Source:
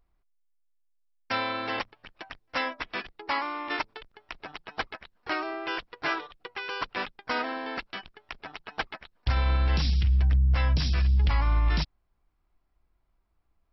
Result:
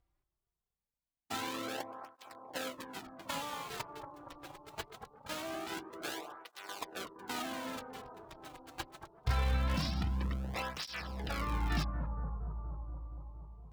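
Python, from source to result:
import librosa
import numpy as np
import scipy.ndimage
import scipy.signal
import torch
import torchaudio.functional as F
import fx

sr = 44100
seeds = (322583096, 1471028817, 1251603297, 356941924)

y = fx.dead_time(x, sr, dead_ms=0.25)
y = fx.echo_bbd(y, sr, ms=234, stages=2048, feedback_pct=75, wet_db=-8.0)
y = fx.flanger_cancel(y, sr, hz=0.23, depth_ms=4.8)
y = y * 10.0 ** (-2.5 / 20.0)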